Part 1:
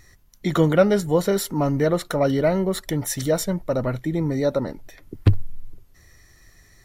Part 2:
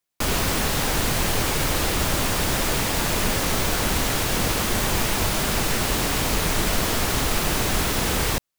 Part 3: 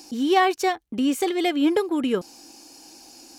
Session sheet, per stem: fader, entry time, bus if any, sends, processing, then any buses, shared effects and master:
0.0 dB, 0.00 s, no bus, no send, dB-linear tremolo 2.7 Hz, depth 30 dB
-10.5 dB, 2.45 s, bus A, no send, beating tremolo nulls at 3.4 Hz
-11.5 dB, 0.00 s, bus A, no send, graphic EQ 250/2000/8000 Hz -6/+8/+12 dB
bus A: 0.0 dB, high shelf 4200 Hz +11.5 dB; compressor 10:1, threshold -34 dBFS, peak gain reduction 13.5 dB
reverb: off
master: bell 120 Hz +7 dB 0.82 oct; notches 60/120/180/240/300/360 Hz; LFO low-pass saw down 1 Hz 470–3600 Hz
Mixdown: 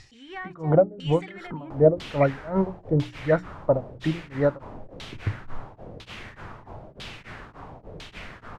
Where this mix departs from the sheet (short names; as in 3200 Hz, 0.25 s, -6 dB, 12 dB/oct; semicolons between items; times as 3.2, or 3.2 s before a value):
stem 2: entry 2.45 s -> 1.50 s; stem 3 -11.5 dB -> -20.0 dB